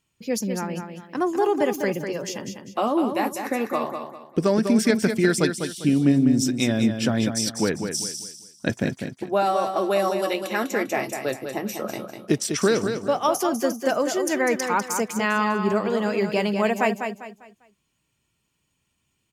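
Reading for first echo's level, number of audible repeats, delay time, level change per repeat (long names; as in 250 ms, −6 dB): −7.0 dB, 3, 199 ms, −10.0 dB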